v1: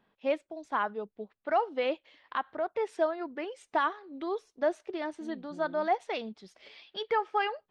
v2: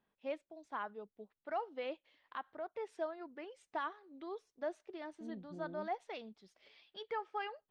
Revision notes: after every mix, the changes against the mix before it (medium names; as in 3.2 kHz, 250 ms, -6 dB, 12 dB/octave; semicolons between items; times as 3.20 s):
first voice -11.5 dB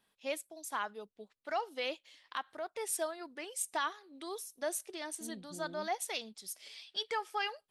first voice: remove tape spacing loss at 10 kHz 41 dB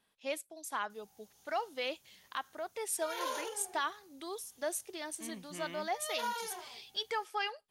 second voice: remove steep low-pass 660 Hz; background: unmuted